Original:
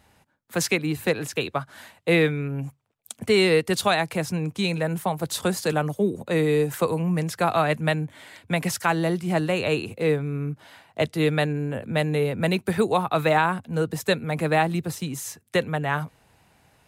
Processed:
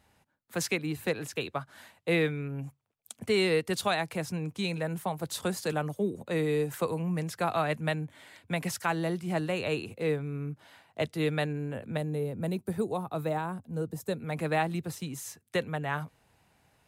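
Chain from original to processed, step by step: 11.97–14.2 bell 2400 Hz -12.5 dB 2.7 oct; gain -7 dB

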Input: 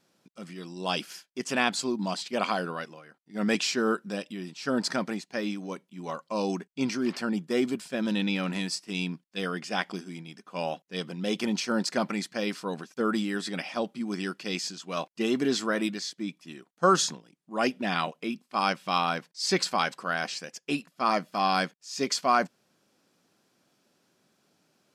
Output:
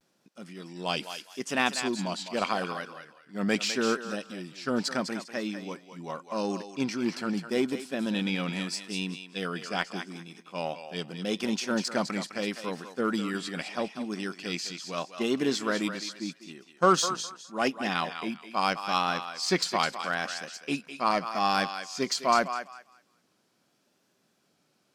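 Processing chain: thinning echo 0.201 s, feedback 26%, high-pass 690 Hz, level -7 dB; vibrato 0.8 Hz 63 cents; added harmonics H 7 -30 dB, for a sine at -9.5 dBFS

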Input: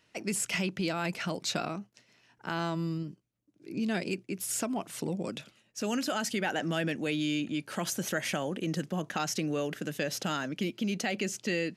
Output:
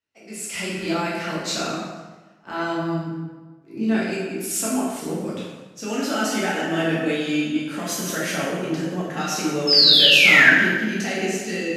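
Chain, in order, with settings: AGC gain up to 8 dB; painted sound fall, 9.67–10.51, 1500–5300 Hz -15 dBFS; plate-style reverb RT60 1.7 s, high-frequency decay 0.7×, DRR -7.5 dB; three-band expander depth 40%; gain -8 dB

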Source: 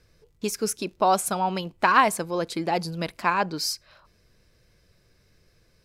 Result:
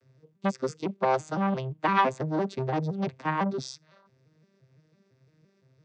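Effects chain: arpeggiated vocoder minor triad, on C3, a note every 0.17 s; core saturation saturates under 1000 Hz

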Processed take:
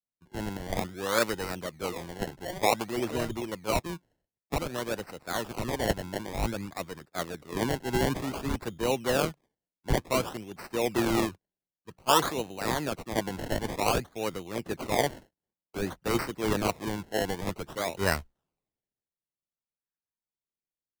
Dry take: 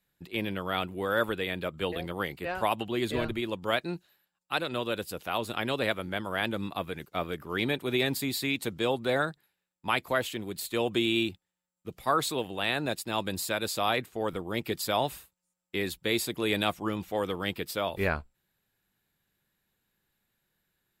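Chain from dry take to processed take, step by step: decimation with a swept rate 25×, swing 100% 0.54 Hz; three-band expander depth 70%

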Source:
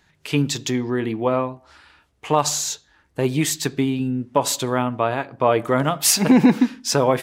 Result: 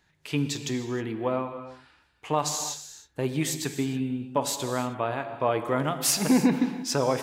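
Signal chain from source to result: non-linear reverb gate 0.34 s flat, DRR 8.5 dB; gain -7.5 dB

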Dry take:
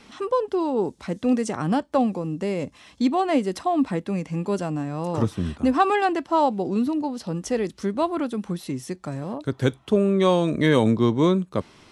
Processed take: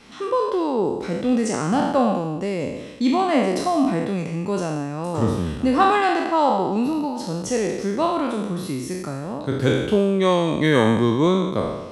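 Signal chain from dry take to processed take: spectral trails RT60 1.11 s

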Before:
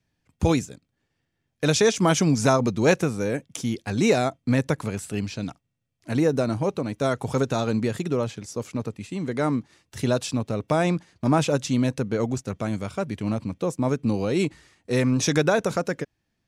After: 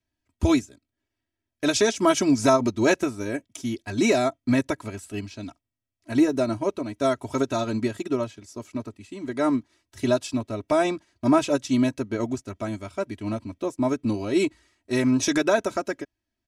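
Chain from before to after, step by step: comb 3.1 ms, depth 90%; in parallel at -2 dB: limiter -12 dBFS, peak gain reduction 7.5 dB; on the sum: upward expander 1.5:1, over -30 dBFS; gain -4.5 dB

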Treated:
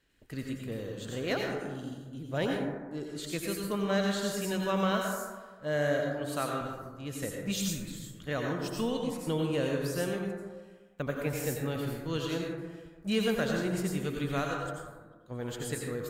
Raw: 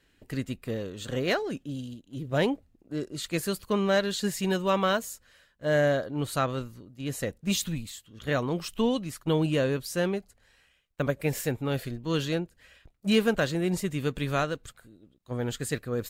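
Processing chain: 6.07–6.61 HPF 230 Hz 6 dB/oct; on a send: high shelf 4400 Hz +9.5 dB + reverb RT60 1.4 s, pre-delay 78 ms, DRR 0.5 dB; on the sum: gain -6.5 dB

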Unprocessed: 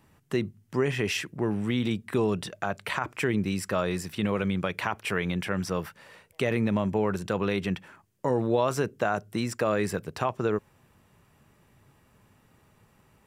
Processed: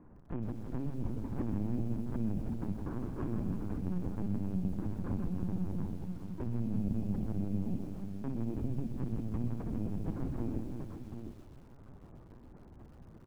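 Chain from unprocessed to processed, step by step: FFT order left unsorted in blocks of 64 samples; treble ducked by the level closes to 320 Hz, closed at -24.5 dBFS; low shelf 230 Hz +3 dB; in parallel at -1.5 dB: limiter -27.5 dBFS, peak gain reduction 10 dB; on the sum: compressor 4:1, threshold -32 dBFS, peak gain reduction 10 dB; sample-and-hold 16×; Gaussian blur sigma 6.2 samples; soft clip -28.5 dBFS, distortion -18 dB; on a send: tapped delay 59/161/324/341/542/734 ms -10.5/-6.5/-10.5/-12/-12.5/-7.5 dB; on the sum: LPC vocoder at 8 kHz pitch kept; lo-fi delay 0.127 s, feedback 55%, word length 9-bit, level -12 dB

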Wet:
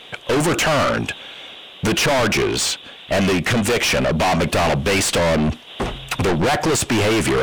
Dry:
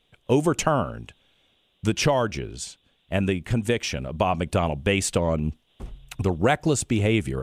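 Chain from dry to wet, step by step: overdrive pedal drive 34 dB, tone 3000 Hz, clips at -6.5 dBFS; soft clip -19 dBFS, distortion -11 dB; gain +3.5 dB

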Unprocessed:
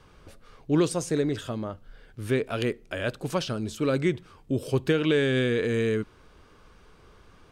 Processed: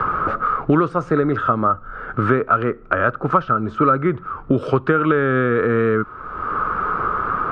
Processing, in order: synth low-pass 1300 Hz, resonance Q 13; three-band squash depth 100%; gain +5.5 dB

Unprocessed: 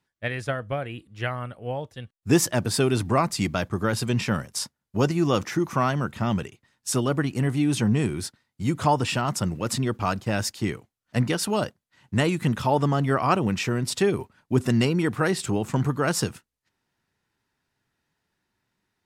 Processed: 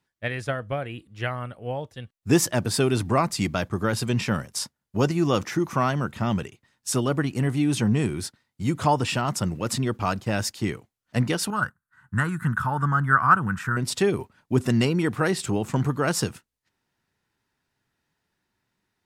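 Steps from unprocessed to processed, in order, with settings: 11.5–13.77 EQ curve 160 Hz 0 dB, 380 Hz -13 dB, 620 Hz -14 dB, 1500 Hz +14 dB, 2300 Hz -13 dB, 5500 Hz -15 dB, 8600 Hz -3 dB

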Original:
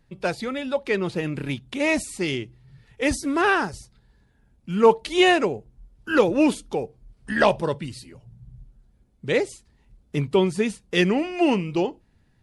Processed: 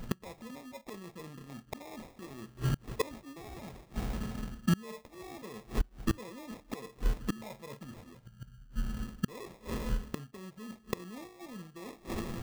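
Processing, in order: bell 220 Hz +10 dB 0.21 oct; in parallel at +1.5 dB: limiter -12.5 dBFS, peak gain reduction 9.5 dB; on the sum: two-slope reverb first 0.25 s, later 1.6 s, from -27 dB, DRR 8.5 dB; reverse; compressor 16:1, threshold -26 dBFS, peak gain reduction 24.5 dB; reverse; sample-rate reducer 1500 Hz, jitter 0%; flipped gate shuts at -32 dBFS, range -31 dB; gain +14 dB

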